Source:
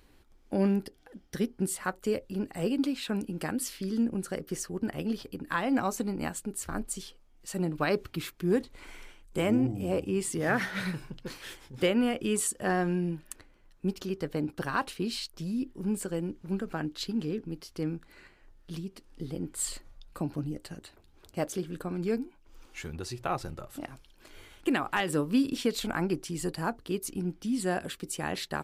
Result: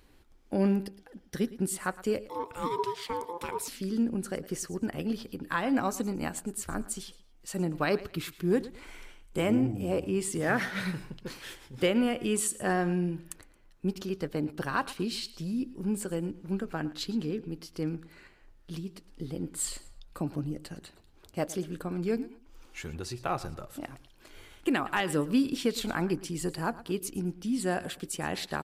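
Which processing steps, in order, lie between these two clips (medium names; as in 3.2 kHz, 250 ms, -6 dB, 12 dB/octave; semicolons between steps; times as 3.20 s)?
feedback delay 112 ms, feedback 27%, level -17.5 dB; 2.29–3.68 s: ring modulator 690 Hz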